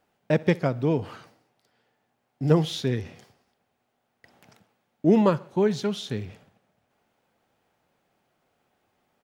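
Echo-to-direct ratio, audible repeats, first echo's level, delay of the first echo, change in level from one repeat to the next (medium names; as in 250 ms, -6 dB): -22.0 dB, 2, -23.0 dB, 64 ms, -5.0 dB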